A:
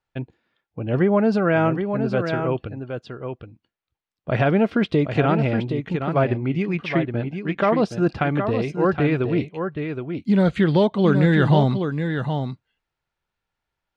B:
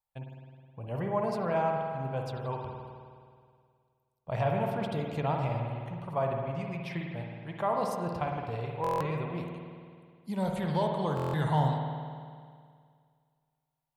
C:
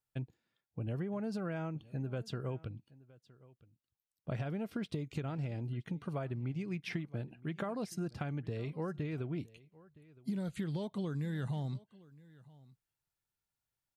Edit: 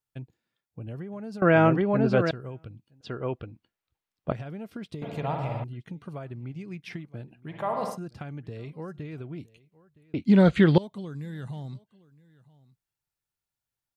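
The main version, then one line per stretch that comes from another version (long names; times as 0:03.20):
C
0:01.42–0:02.31: punch in from A
0:03.01–0:04.32: punch in from A
0:05.02–0:05.64: punch in from B
0:07.50–0:07.94: punch in from B, crossfade 0.10 s
0:10.14–0:10.78: punch in from A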